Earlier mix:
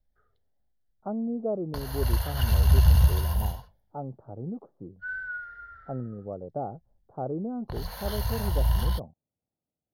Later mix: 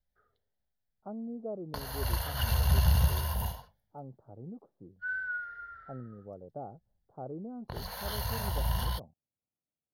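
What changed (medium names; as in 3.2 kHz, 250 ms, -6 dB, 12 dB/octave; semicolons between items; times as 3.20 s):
speech -9.0 dB; background: add bass shelf 84 Hz -11.5 dB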